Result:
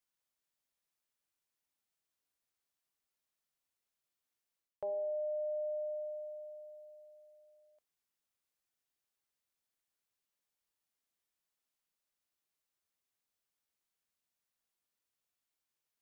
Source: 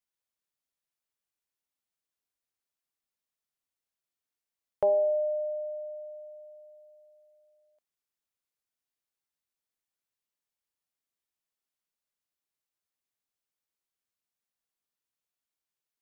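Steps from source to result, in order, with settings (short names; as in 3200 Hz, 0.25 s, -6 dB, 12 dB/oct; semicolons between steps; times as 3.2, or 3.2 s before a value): de-hum 60.89 Hz, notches 8; reverse; compressor 16:1, threshold -36 dBFS, peak gain reduction 15.5 dB; reverse; gain +1 dB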